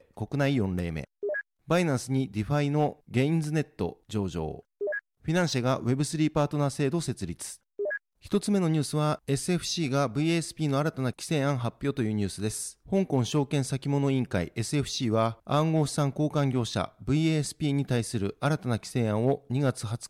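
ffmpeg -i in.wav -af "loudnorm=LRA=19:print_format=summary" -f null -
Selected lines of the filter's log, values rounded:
Input Integrated:    -28.5 LUFS
Input True Peak:     -14.5 dBTP
Input LRA:             1.6 LU
Input Threshold:     -38.6 LUFS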